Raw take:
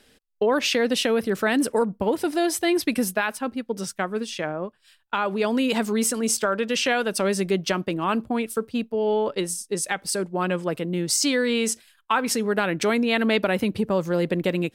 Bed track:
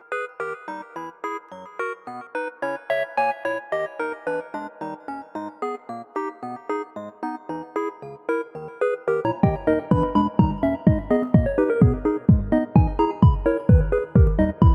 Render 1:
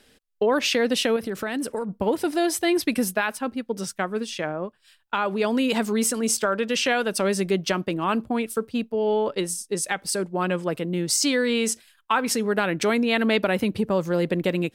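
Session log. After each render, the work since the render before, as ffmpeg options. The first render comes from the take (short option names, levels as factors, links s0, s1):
-filter_complex "[0:a]asettb=1/sr,asplit=3[s0][s1][s2];[s0]atrim=end=1.164[s3];[s1]atrim=start=1.16:end=1.89,asetpts=PTS-STARTPTS,afade=t=in:d=0.004:c=qsin,afade=t=out:st=0.726:d=0.004:c=qsin,acompressor=threshold=0.0562:ratio=4:attack=3.2:release=140:knee=1:detection=peak[s4];[s2]atrim=start=1.886[s5];[s3][s4]acrossfade=d=0.004:c1=hsin:c2=qsin[s6];[s6][s5]acrossfade=d=0.004:c1=qsin:c2=hsin"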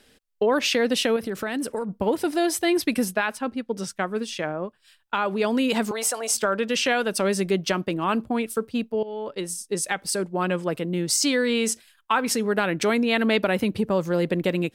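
-filter_complex "[0:a]asettb=1/sr,asplit=3[s0][s1][s2];[s0]atrim=end=3.054[s3];[s1]atrim=start=3.05:end=4.02,asetpts=PTS-STARTPTS,afade=t=in:d=0.004:c=qsin,afade=t=out:st=0.966:d=0.004:c=qsin,highshelf=f=12000:g=-10[s4];[s2]atrim=start=4.016[s5];[s3][s4]acrossfade=d=0.004:c1=hsin:c2=qsin[s6];[s6][s5]acrossfade=d=0.004:c1=qsin:c2=hsin,asettb=1/sr,asplit=3[s7][s8][s9];[s7]atrim=end=5.914[s10];[s8]atrim=start=5.91:end=6.35,asetpts=PTS-STARTPTS,afade=t=in:d=0.004:c=qsin,afade=t=out:st=0.436:d=0.004:c=qsin,highpass=f=710:t=q:w=3.9[s11];[s9]atrim=start=6.346[s12];[s10][s11]acrossfade=d=0.004:c1=hsin:c2=qsin[s13];[s13][s12]acrossfade=d=0.004:c1=qsin:c2=hsin,asplit=2[s14][s15];[s14]atrim=end=9.03,asetpts=PTS-STARTPTS,afade=t=out:st=9.026:d=0.004:c=hsin:silence=0.158489[s16];[s15]atrim=start=9.03,asetpts=PTS-STARTPTS,afade=t=in:d=0.69:silence=0.158489[s17];[s16][s17]concat=n=2:v=0:a=1"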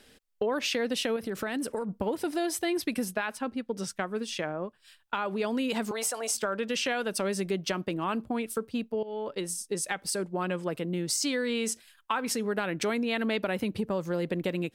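-af "acompressor=threshold=0.0251:ratio=2"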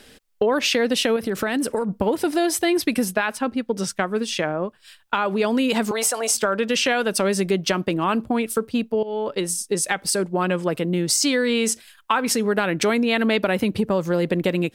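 -af "volume=2.82"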